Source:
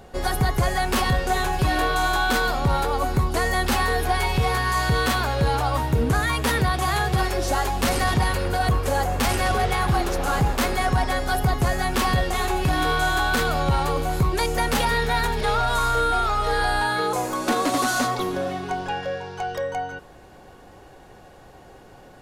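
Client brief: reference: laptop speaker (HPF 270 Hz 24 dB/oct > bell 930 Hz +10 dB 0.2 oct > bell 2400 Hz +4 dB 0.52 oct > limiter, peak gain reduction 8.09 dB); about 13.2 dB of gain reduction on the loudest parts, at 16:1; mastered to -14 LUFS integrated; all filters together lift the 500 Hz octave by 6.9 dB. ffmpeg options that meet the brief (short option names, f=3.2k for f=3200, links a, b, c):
-af "equalizer=f=500:t=o:g=8,acompressor=threshold=-28dB:ratio=16,highpass=f=270:w=0.5412,highpass=f=270:w=1.3066,equalizer=f=930:t=o:w=0.2:g=10,equalizer=f=2.4k:t=o:w=0.52:g=4,volume=20.5dB,alimiter=limit=-5dB:level=0:latency=1"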